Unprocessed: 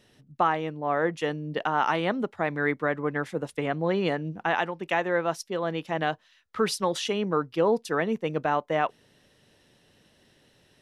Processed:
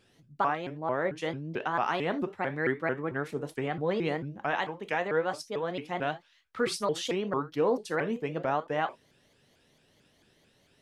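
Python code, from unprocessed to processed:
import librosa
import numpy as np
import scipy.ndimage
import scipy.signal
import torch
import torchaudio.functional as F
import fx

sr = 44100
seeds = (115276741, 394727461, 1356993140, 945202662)

y = fx.rev_gated(x, sr, seeds[0], gate_ms=100, shape='falling', drr_db=8.5)
y = fx.vibrato_shape(y, sr, shape='saw_up', rate_hz=4.5, depth_cents=250.0)
y = F.gain(torch.from_numpy(y), -4.5).numpy()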